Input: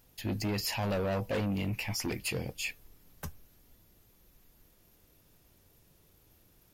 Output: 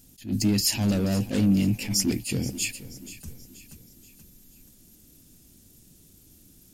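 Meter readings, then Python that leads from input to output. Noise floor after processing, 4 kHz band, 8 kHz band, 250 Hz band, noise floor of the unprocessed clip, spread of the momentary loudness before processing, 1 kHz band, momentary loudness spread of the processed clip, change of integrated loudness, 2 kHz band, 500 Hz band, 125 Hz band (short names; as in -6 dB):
-56 dBFS, +8.5 dB, +12.5 dB, +12.0 dB, -65 dBFS, 15 LU, -3.0 dB, 19 LU, +9.5 dB, +1.0 dB, +0.5 dB, +8.0 dB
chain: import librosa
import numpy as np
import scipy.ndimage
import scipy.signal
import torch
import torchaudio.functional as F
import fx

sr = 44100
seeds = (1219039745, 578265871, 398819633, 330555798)

p1 = fx.graphic_eq(x, sr, hz=(250, 500, 1000, 2000, 8000), db=(10, -7, -10, -5, 10))
p2 = p1 + fx.echo_feedback(p1, sr, ms=480, feedback_pct=44, wet_db=-16.0, dry=0)
p3 = fx.attack_slew(p2, sr, db_per_s=190.0)
y = p3 * librosa.db_to_amplitude(6.5)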